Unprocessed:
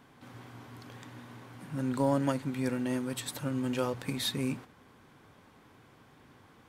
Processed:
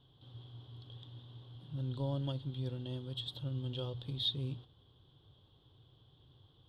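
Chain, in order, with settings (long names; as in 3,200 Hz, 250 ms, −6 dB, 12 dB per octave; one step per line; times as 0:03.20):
drawn EQ curve 130 Hz 0 dB, 220 Hz −19 dB, 350 Hz −10 dB, 1,100 Hz −18 dB, 2,300 Hz −29 dB, 3,300 Hz +5 dB, 6,200 Hz −28 dB
level +1 dB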